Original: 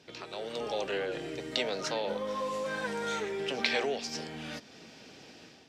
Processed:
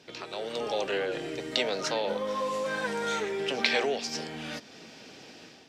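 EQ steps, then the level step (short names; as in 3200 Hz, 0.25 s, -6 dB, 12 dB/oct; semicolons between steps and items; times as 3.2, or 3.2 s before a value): low shelf 110 Hz -6.5 dB; +3.5 dB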